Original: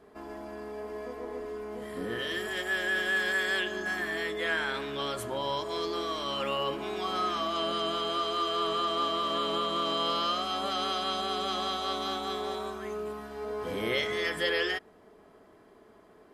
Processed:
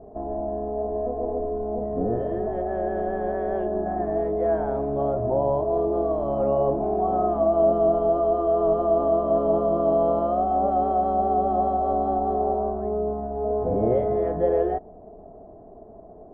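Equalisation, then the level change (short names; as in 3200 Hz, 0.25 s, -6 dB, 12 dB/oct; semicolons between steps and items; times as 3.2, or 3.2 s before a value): synth low-pass 700 Hz, resonance Q 6.2; tilt -4.5 dB/oct; 0.0 dB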